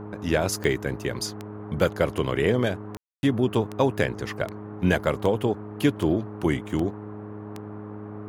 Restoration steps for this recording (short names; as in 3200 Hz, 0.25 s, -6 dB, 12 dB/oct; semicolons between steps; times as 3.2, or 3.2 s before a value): de-click; de-hum 104.7 Hz, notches 4; room tone fill 2.97–3.23; noise print and reduce 30 dB